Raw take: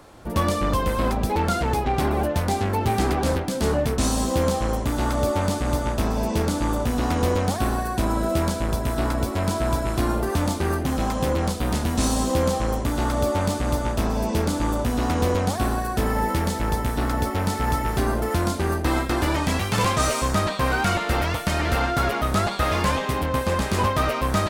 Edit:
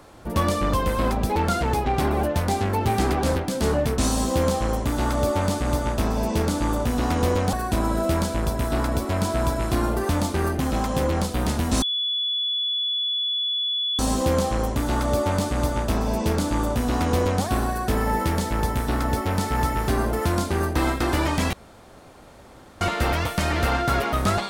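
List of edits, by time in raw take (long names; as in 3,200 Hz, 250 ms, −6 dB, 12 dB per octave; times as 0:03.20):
0:07.53–0:07.79: remove
0:12.08: insert tone 3,420 Hz −22 dBFS 2.17 s
0:19.62–0:20.90: fill with room tone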